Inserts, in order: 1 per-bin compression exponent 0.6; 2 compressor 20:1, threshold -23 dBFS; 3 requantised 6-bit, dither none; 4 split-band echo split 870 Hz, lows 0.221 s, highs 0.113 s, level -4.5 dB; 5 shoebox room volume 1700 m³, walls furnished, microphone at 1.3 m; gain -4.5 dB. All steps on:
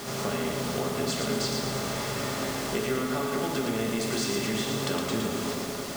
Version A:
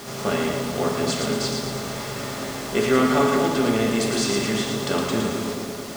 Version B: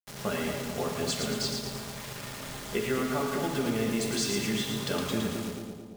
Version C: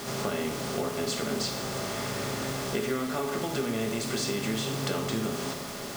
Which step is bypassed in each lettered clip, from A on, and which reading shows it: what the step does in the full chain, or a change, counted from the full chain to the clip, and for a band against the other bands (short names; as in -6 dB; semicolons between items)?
2, mean gain reduction 4.0 dB; 1, 1 kHz band -2.0 dB; 4, echo-to-direct -0.5 dB to -6.5 dB